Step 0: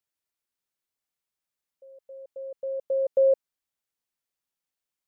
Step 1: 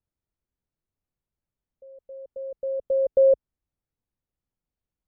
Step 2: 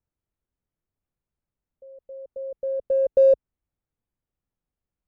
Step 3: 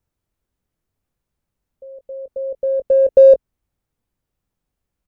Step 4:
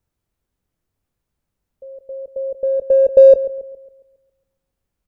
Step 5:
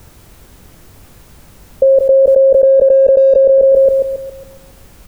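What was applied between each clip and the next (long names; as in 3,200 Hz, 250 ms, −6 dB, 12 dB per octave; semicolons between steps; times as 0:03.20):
spectral tilt −5.5 dB per octave; level −2 dB
adaptive Wiener filter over 9 samples; level +1.5 dB
double-tracking delay 21 ms −13 dB; level +8.5 dB
feedback echo with a low-pass in the loop 137 ms, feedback 48%, low-pass 1,200 Hz, level −13.5 dB; level +1 dB
envelope flattener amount 100%; level −3 dB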